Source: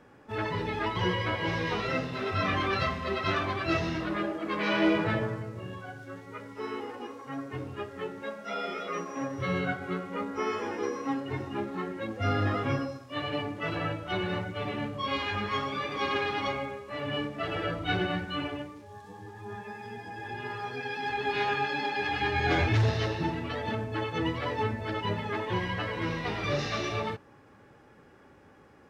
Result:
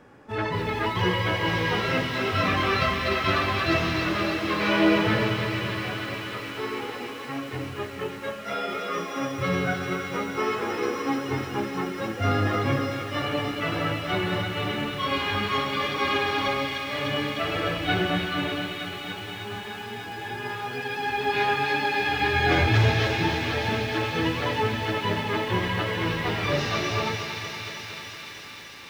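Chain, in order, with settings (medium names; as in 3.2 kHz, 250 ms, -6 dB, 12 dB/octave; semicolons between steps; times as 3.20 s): on a send: feedback echo behind a high-pass 301 ms, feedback 82%, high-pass 2.1 kHz, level -4 dB; on the sum: bit-crushed delay 233 ms, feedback 80%, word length 8-bit, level -10.5 dB; trim +4 dB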